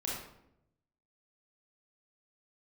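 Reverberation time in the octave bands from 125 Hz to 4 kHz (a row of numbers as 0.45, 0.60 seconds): 1.2, 1.0, 0.90, 0.70, 0.60, 0.50 seconds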